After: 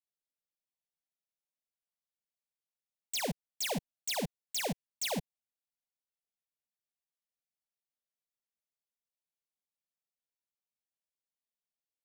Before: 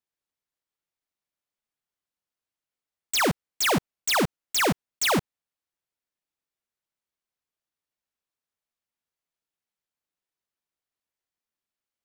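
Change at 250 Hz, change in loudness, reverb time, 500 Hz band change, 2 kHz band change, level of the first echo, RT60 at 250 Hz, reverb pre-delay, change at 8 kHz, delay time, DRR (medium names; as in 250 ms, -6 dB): -11.5 dB, -11.0 dB, no reverb, -11.0 dB, -15.0 dB, no echo, no reverb, no reverb, -9.5 dB, no echo, no reverb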